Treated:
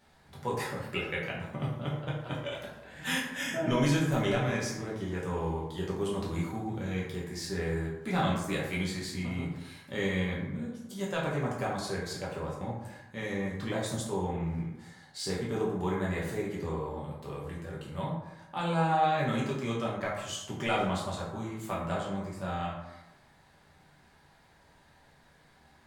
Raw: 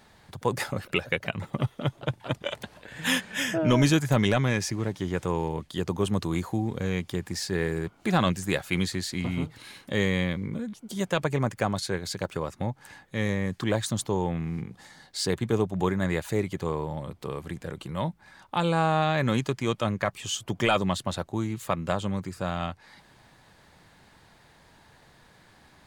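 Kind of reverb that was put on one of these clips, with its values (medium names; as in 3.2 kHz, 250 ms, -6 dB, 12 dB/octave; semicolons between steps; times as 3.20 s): plate-style reverb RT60 0.91 s, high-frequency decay 0.5×, DRR -5.5 dB; trim -11 dB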